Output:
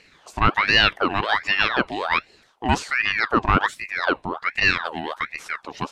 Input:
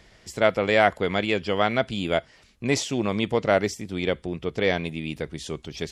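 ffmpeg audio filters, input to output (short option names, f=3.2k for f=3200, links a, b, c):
-af "equalizer=f=125:t=o:w=1:g=4,equalizer=f=250:t=o:w=1:g=7,equalizer=f=500:t=o:w=1:g=9,equalizer=f=2k:t=o:w=1:g=8,aeval=exprs='val(0)*sin(2*PI*1400*n/s+1400*0.65/1.3*sin(2*PI*1.3*n/s))':c=same,volume=-3dB"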